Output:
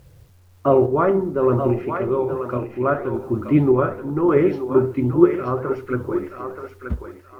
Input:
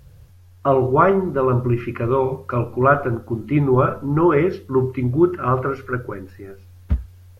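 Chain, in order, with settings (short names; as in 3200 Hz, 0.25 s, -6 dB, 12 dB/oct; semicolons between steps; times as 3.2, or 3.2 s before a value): bell 350 Hz +8 dB 2.4 oct; flange 1.9 Hz, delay 1.5 ms, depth 9.9 ms, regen +84%; bit-crush 10-bit; random-step tremolo; thinning echo 0.928 s, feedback 29%, high-pass 600 Hz, level -5 dB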